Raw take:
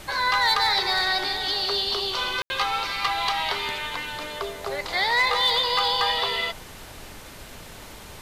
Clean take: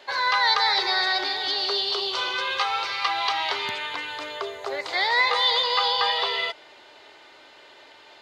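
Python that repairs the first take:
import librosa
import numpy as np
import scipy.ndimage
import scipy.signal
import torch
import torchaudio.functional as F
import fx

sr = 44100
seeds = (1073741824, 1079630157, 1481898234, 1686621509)

y = fx.fix_declip(x, sr, threshold_db=-14.5)
y = fx.fix_ambience(y, sr, seeds[0], print_start_s=7.59, print_end_s=8.09, start_s=2.42, end_s=2.5)
y = fx.noise_reduce(y, sr, print_start_s=7.59, print_end_s=8.09, reduce_db=8.0)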